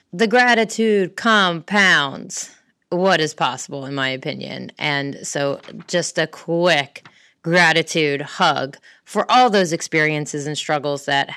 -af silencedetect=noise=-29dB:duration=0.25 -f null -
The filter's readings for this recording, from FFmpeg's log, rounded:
silence_start: 2.46
silence_end: 2.92 | silence_duration: 0.46
silence_start: 7.06
silence_end: 7.45 | silence_duration: 0.39
silence_start: 8.74
silence_end: 9.10 | silence_duration: 0.36